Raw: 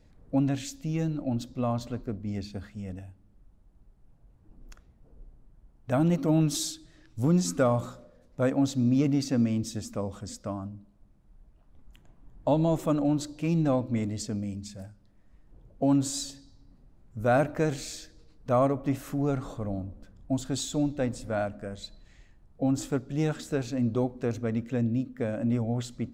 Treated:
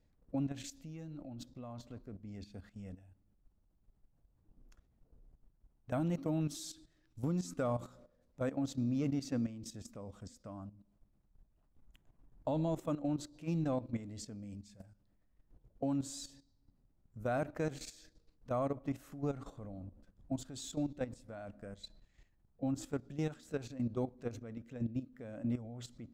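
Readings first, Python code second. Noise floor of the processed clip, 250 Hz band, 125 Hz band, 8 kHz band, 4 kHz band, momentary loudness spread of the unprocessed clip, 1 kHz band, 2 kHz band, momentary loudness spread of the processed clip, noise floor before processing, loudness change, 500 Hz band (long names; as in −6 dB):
−73 dBFS, −11.0 dB, −11.0 dB, −12.5 dB, −12.0 dB, 15 LU, −11.5 dB, −11.5 dB, 15 LU, −60 dBFS, −11.0 dB, −11.0 dB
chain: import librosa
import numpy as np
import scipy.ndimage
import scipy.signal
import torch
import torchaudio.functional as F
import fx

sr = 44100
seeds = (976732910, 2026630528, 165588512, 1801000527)

y = fx.level_steps(x, sr, step_db=13)
y = F.gain(torch.from_numpy(y), -7.0).numpy()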